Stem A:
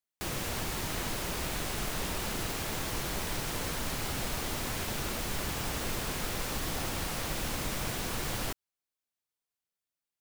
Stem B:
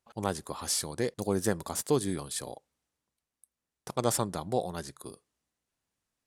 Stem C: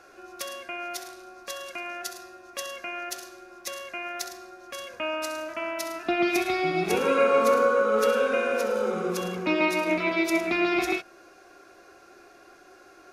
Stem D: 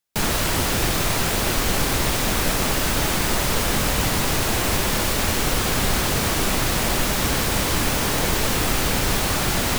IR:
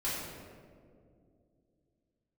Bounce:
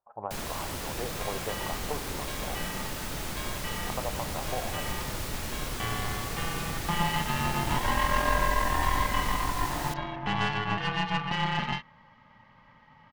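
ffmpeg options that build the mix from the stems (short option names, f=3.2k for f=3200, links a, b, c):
-filter_complex "[0:a]asubboost=boost=10:cutoff=210,adelay=1100,volume=-18.5dB[a];[1:a]lowpass=f=1.2k:w=0.5412,lowpass=f=1.2k:w=1.3066,lowshelf=f=450:t=q:w=1.5:g=-13,acompressor=threshold=-34dB:ratio=6,volume=1.5dB,asplit=2[b][c];[c]volume=-14.5dB[d];[2:a]lowpass=f=3.5k:w=0.5412,lowpass=f=3.5k:w=1.3066,aeval=exprs='val(0)*sin(2*PI*510*n/s)':c=same,aeval=exprs='(tanh(12.6*val(0)+0.7)-tanh(0.7))/12.6':c=same,adelay=800,volume=2.5dB[e];[3:a]adelay=150,volume=-14.5dB[f];[4:a]atrim=start_sample=2205[g];[d][g]afir=irnorm=-1:irlink=0[h];[a][b][e][f][h]amix=inputs=5:normalize=0"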